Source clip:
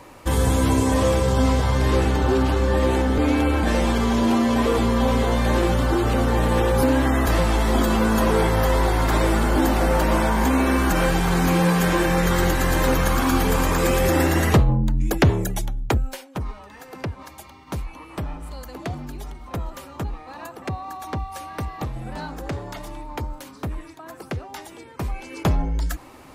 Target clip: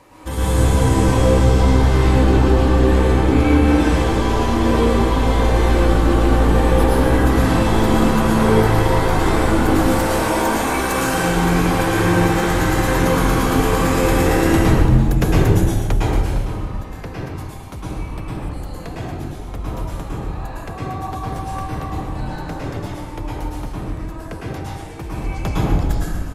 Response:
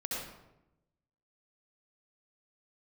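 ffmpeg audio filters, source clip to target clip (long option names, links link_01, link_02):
-filter_complex "[0:a]aeval=exprs='0.266*(abs(mod(val(0)/0.266+3,4)-2)-1)':channel_layout=same,asettb=1/sr,asplit=3[link_01][link_02][link_03];[link_01]atrim=end=9.754[link_04];[link_02]atrim=start=9.75:end=11.15,asetpts=PTS-STARTPTS,afade=type=in:duration=0.004:curve=qsin,afade=type=out:start_time=1.396:duration=0.004:curve=qsin,bass=frequency=250:gain=-12,treble=frequency=4000:gain=6[link_05];[link_03]atrim=start=11.146[link_06];[link_04][link_05]acrossfade=duration=0.004:curve1=hsin:curve2=qsin[link_07];[link_07][link_06]acrossfade=duration=0.004:curve1=qsin:curve2=hsin,asplit=7[link_08][link_09][link_10][link_11][link_12][link_13][link_14];[link_09]adelay=125,afreqshift=-70,volume=-9.5dB[link_15];[link_10]adelay=250,afreqshift=-140,volume=-14.9dB[link_16];[link_11]adelay=375,afreqshift=-210,volume=-20.2dB[link_17];[link_12]adelay=500,afreqshift=-280,volume=-25.6dB[link_18];[link_13]adelay=625,afreqshift=-350,volume=-30.9dB[link_19];[link_14]adelay=750,afreqshift=-420,volume=-36.3dB[link_20];[link_08][link_15][link_16][link_17][link_18][link_19][link_20]amix=inputs=7:normalize=0[link_21];[1:a]atrim=start_sample=2205,asetrate=26460,aresample=44100[link_22];[link_21][link_22]afir=irnorm=-1:irlink=0,volume=-4dB"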